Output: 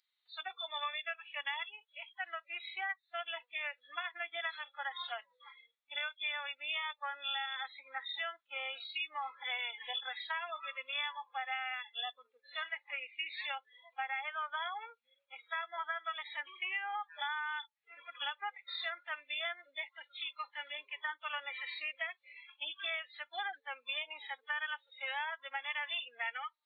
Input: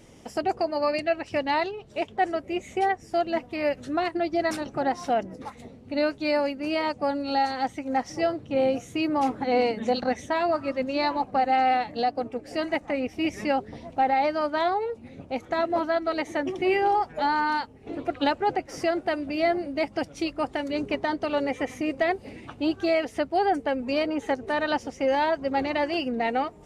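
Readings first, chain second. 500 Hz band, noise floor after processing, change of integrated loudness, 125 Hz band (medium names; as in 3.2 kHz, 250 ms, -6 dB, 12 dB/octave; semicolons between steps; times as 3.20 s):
-27.0 dB, -82 dBFS, -13.0 dB, under -40 dB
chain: knee-point frequency compression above 3.2 kHz 4:1; high-pass 1.3 kHz 24 dB/octave; harmonic-percussive split percussive -14 dB; compression 6:1, threshold -40 dBFS, peak gain reduction 12 dB; spectral noise reduction 28 dB; trim +5 dB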